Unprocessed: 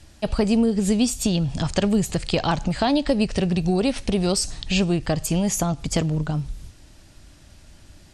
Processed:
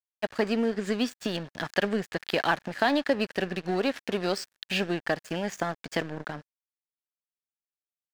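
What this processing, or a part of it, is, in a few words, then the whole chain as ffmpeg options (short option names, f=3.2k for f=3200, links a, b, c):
pocket radio on a weak battery: -af "highpass=290,lowpass=4.1k,aeval=exprs='sgn(val(0))*max(abs(val(0))-0.0141,0)':c=same,equalizer=f=1.7k:t=o:w=0.44:g=11,volume=-2dB"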